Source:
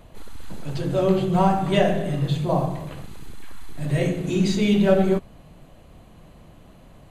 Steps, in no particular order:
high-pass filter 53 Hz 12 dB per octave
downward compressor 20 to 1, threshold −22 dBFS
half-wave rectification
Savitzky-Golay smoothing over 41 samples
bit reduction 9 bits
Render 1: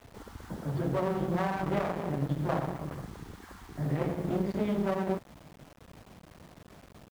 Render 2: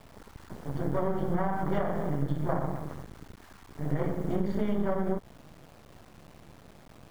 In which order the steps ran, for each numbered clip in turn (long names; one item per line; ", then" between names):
Savitzky-Golay smoothing, then half-wave rectification, then downward compressor, then high-pass filter, then bit reduction
high-pass filter, then half-wave rectification, then Savitzky-Golay smoothing, then bit reduction, then downward compressor